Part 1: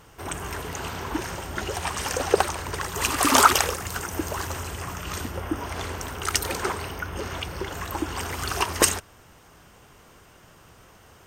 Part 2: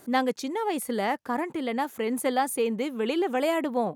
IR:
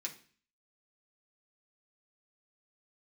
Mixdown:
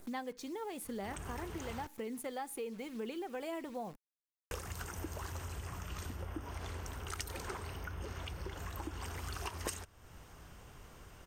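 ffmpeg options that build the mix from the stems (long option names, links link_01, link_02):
-filter_complex "[0:a]adelay=850,volume=-5.5dB,asplit=3[link_01][link_02][link_03];[link_01]atrim=end=1.87,asetpts=PTS-STARTPTS,afade=type=out:start_time=1.866:duration=0.004:curve=hsin[link_04];[link_02]atrim=start=1.87:end=4.51,asetpts=PTS-STARTPTS,volume=0[link_05];[link_03]atrim=start=4.51,asetpts=PTS-STARTPTS,afade=type=in:duration=0.004:curve=hsin[link_06];[link_04][link_05][link_06]concat=n=3:v=0:a=1[link_07];[1:a]aphaser=in_gain=1:out_gain=1:delay=3:decay=0.34:speed=0.99:type=triangular,acrusher=bits=8:dc=4:mix=0:aa=0.000001,volume=-6.5dB,asplit=2[link_08][link_09];[link_09]volume=-12dB[link_10];[2:a]atrim=start_sample=2205[link_11];[link_10][link_11]afir=irnorm=-1:irlink=0[link_12];[link_07][link_08][link_12]amix=inputs=3:normalize=0,lowshelf=frequency=92:gain=12,acompressor=threshold=-44dB:ratio=2.5"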